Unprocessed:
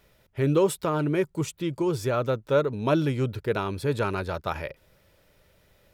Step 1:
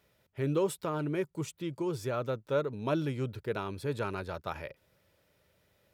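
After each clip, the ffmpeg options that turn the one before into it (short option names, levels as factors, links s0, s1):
-af "highpass=70,volume=0.422"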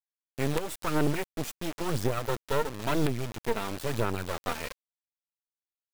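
-af "aphaser=in_gain=1:out_gain=1:delay=4.5:decay=0.64:speed=0.98:type=sinusoidal,acrusher=bits=4:dc=4:mix=0:aa=0.000001,alimiter=limit=0.0891:level=0:latency=1:release=293,volume=2.11"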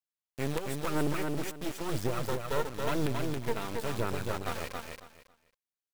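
-af "aecho=1:1:274|548|822:0.631|0.139|0.0305,volume=0.631"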